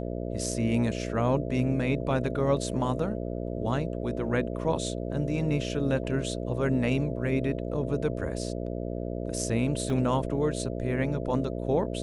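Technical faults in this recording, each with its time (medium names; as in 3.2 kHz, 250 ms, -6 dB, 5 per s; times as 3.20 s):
buzz 60 Hz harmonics 11 -33 dBFS
9.90 s: dropout 2.1 ms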